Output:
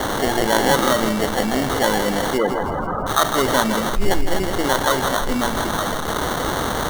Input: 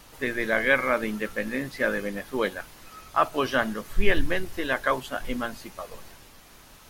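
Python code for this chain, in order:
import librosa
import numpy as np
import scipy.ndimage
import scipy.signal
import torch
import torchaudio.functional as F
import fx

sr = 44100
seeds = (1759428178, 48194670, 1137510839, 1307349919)

y = x + 0.5 * 10.0 ** (-21.5 / 20.0) * np.diff(np.sign(x), prepend=np.sign(x[:1]))
y = scipy.signal.sosfilt(scipy.signal.cheby1(6, 1.0, 9300.0, 'lowpass', fs=sr, output='sos'), y)
y = fx.sample_hold(y, sr, seeds[0], rate_hz=2500.0, jitter_pct=0)
y = fx.spec_topn(y, sr, count=32, at=(2.37, 3.06), fade=0.02)
y = fx.echo_feedback(y, sr, ms=162, feedback_pct=43, wet_db=-11)
y = fx.env_flatten(y, sr, amount_pct=50)
y = y * 10.0 ** (1.0 / 20.0)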